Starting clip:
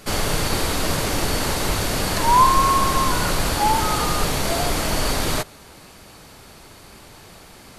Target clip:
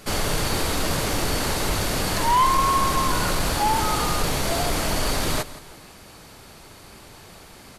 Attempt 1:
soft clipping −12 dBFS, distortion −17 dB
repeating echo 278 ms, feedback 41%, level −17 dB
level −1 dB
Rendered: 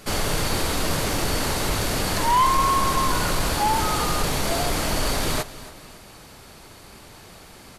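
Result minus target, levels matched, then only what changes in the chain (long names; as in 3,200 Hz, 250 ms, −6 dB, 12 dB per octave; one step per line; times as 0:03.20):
echo 109 ms late
change: repeating echo 169 ms, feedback 41%, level −17 dB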